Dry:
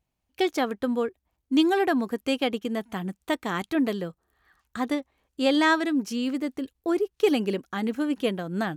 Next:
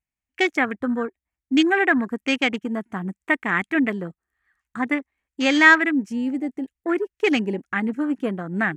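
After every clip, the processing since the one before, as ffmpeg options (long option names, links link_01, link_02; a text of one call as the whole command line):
ffmpeg -i in.wav -af "highshelf=frequency=10000:gain=-10.5,afwtdn=0.0158,equalizer=frequency=125:width_type=o:width=1:gain=-4,equalizer=frequency=500:width_type=o:width=1:gain=-7,equalizer=frequency=1000:width_type=o:width=1:gain=-3,equalizer=frequency=2000:width_type=o:width=1:gain=11,equalizer=frequency=4000:width_type=o:width=1:gain=-7,equalizer=frequency=8000:width_type=o:width=1:gain=9,volume=5.5dB" out.wav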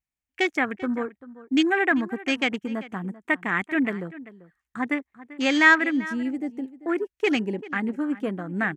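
ffmpeg -i in.wav -filter_complex "[0:a]asplit=2[link_01][link_02];[link_02]adelay=390.7,volume=-17dB,highshelf=frequency=4000:gain=-8.79[link_03];[link_01][link_03]amix=inputs=2:normalize=0,volume=-3dB" out.wav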